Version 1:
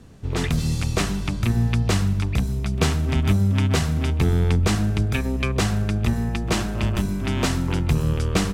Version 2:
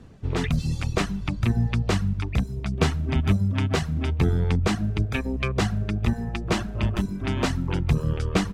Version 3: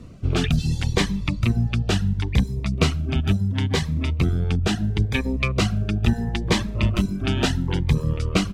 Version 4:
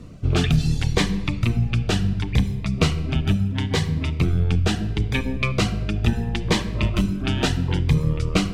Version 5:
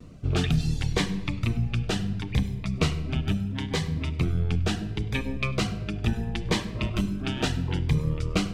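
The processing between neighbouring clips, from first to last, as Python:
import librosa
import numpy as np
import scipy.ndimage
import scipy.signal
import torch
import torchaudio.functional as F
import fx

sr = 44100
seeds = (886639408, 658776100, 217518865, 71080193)

y1 = fx.dereverb_blind(x, sr, rt60_s=1.0)
y1 = fx.lowpass(y1, sr, hz=3500.0, slope=6)
y2 = fx.rider(y1, sr, range_db=10, speed_s=0.5)
y2 = fx.dynamic_eq(y2, sr, hz=3300.0, q=1.1, threshold_db=-44.0, ratio=4.0, max_db=5)
y2 = fx.notch_cascade(y2, sr, direction='rising', hz=0.73)
y2 = y2 * librosa.db_to_amplitude(2.5)
y3 = fx.rider(y2, sr, range_db=10, speed_s=2.0)
y3 = fx.room_shoebox(y3, sr, seeds[0], volume_m3=1000.0, walls='mixed', distance_m=0.46)
y4 = fx.hum_notches(y3, sr, base_hz=50, count=2)
y4 = fx.vibrato(y4, sr, rate_hz=0.61, depth_cents=26.0)
y4 = y4 + 10.0 ** (-22.5 / 20.0) * np.pad(y4, (int(100 * sr / 1000.0), 0))[:len(y4)]
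y4 = y4 * librosa.db_to_amplitude(-5.0)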